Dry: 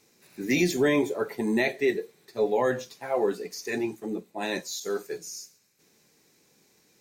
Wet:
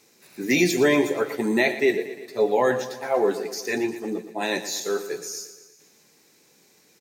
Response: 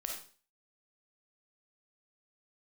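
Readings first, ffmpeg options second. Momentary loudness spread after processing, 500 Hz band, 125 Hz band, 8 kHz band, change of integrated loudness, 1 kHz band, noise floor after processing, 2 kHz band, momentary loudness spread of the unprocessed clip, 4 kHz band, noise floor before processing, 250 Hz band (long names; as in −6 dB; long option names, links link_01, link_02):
12 LU, +4.0 dB, +1.5 dB, +5.5 dB, +4.0 dB, +5.0 dB, −59 dBFS, +5.5 dB, 13 LU, +5.5 dB, −65 dBFS, +3.0 dB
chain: -filter_complex "[0:a]lowshelf=frequency=160:gain=-8,asplit=2[link_01][link_02];[link_02]aecho=0:1:117|234|351|468|585|702:0.224|0.13|0.0753|0.0437|0.0253|0.0147[link_03];[link_01][link_03]amix=inputs=2:normalize=0,volume=5dB"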